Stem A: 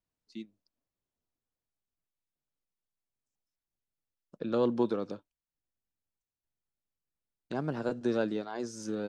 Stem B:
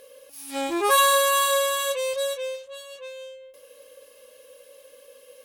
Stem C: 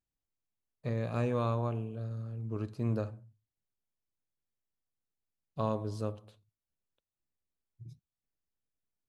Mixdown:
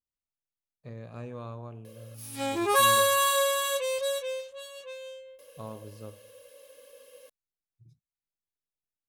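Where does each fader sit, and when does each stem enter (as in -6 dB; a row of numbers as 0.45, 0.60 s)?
off, -3.0 dB, -9.0 dB; off, 1.85 s, 0.00 s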